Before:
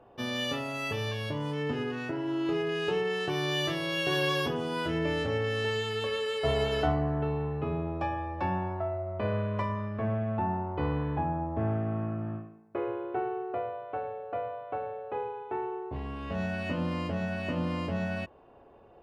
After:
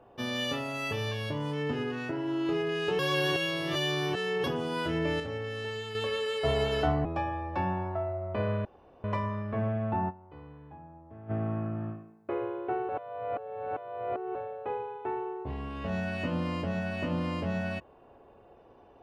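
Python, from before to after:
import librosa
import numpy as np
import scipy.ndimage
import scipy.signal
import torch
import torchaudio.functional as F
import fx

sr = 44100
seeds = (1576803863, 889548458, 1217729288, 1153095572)

y = fx.edit(x, sr, fx.reverse_span(start_s=2.99, length_s=1.45),
    fx.clip_gain(start_s=5.2, length_s=0.75, db=-6.0),
    fx.cut(start_s=7.05, length_s=0.85),
    fx.insert_room_tone(at_s=9.5, length_s=0.39),
    fx.fade_down_up(start_s=10.55, length_s=1.22, db=-18.5, fade_s=0.14, curve='exp'),
    fx.reverse_span(start_s=13.35, length_s=1.46), tone=tone)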